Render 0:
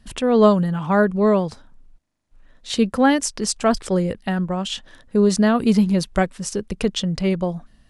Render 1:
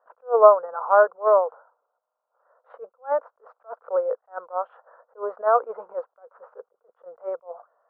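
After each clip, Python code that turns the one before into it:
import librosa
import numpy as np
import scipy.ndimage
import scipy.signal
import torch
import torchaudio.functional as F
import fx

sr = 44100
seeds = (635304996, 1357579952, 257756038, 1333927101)

y = scipy.signal.sosfilt(scipy.signal.cheby1(4, 1.0, [480.0, 1400.0], 'bandpass', fs=sr, output='sos'), x)
y = fx.attack_slew(y, sr, db_per_s=310.0)
y = F.gain(torch.from_numpy(y), 5.0).numpy()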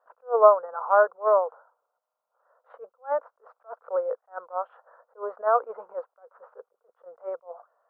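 y = fx.low_shelf(x, sr, hz=460.0, db=-4.5)
y = F.gain(torch.from_numpy(y), -1.5).numpy()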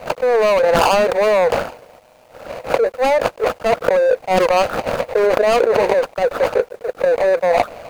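y = scipy.ndimage.median_filter(x, 41, mode='constant')
y = fx.env_flatten(y, sr, amount_pct=100)
y = F.gain(torch.from_numpy(y), 2.0).numpy()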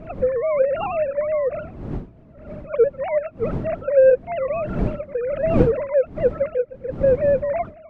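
y = fx.sine_speech(x, sr)
y = fx.dmg_wind(y, sr, seeds[0], corner_hz=230.0, level_db=-25.0)
y = F.gain(torch.from_numpy(y), -5.0).numpy()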